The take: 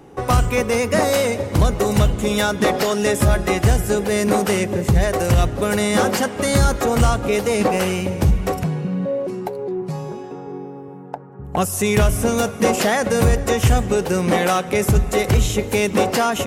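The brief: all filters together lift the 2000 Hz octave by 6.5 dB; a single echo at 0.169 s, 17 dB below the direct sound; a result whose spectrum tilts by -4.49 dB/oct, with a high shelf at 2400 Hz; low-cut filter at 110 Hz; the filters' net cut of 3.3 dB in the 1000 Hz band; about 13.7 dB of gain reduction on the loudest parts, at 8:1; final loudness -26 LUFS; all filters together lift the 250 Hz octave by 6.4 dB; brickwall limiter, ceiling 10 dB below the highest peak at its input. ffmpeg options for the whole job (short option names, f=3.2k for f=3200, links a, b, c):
-af "highpass=110,equalizer=f=250:t=o:g=9,equalizer=f=1k:t=o:g=-9,equalizer=f=2k:t=o:g=7,highshelf=f=2.4k:g=6.5,acompressor=threshold=-23dB:ratio=8,alimiter=limit=-21dB:level=0:latency=1,aecho=1:1:169:0.141,volume=4dB"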